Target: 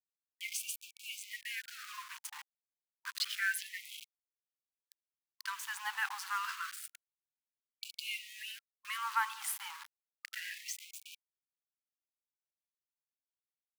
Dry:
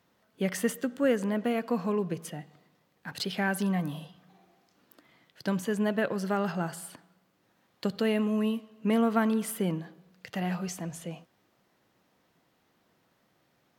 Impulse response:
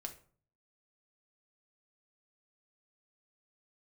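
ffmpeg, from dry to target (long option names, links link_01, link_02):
-af "aeval=exprs='val(0)*gte(abs(val(0)),0.0126)':channel_layout=same,afftfilt=real='re*gte(b*sr/1024,770*pow(2300/770,0.5+0.5*sin(2*PI*0.29*pts/sr)))':imag='im*gte(b*sr/1024,770*pow(2300/770,0.5+0.5*sin(2*PI*0.29*pts/sr)))':win_size=1024:overlap=0.75"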